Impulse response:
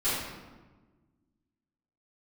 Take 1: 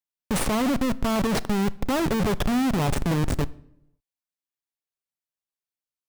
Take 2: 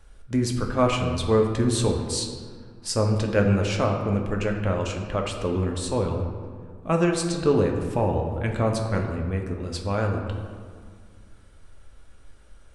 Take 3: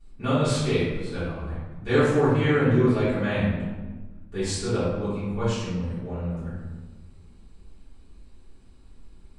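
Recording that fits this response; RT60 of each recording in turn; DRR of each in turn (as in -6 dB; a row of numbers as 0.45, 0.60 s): 3; 0.80, 1.9, 1.3 s; 17.0, 1.5, -16.0 dB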